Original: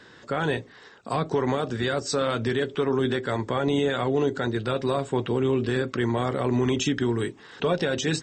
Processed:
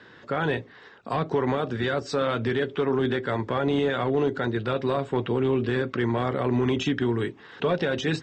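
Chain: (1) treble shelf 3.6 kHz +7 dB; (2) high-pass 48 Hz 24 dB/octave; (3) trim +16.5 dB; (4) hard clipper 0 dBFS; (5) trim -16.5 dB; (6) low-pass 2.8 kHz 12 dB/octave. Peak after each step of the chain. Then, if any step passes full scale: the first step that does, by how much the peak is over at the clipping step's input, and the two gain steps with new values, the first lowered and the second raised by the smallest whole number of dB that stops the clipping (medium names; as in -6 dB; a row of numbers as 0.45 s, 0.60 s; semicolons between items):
-10.5 dBFS, -11.0 dBFS, +5.5 dBFS, 0.0 dBFS, -16.5 dBFS, -16.0 dBFS; step 3, 5.5 dB; step 3 +10.5 dB, step 5 -10.5 dB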